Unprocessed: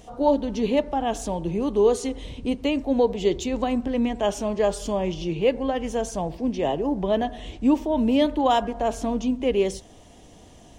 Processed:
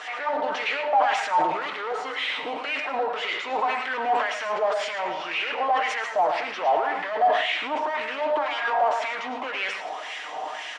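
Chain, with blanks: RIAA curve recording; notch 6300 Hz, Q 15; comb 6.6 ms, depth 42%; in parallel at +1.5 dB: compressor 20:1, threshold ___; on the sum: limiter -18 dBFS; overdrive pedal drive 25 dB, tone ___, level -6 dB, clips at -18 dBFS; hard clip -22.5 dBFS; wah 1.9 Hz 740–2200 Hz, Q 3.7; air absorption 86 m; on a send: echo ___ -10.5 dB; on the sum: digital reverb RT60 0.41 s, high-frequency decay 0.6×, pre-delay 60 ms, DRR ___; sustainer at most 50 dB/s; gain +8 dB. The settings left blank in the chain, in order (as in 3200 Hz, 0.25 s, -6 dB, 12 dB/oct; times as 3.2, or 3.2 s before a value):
-34 dBFS, 5600 Hz, 0.11 s, 8.5 dB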